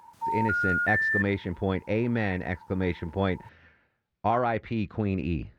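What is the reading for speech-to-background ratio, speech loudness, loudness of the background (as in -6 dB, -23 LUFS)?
-3.0 dB, -29.5 LUFS, -26.5 LUFS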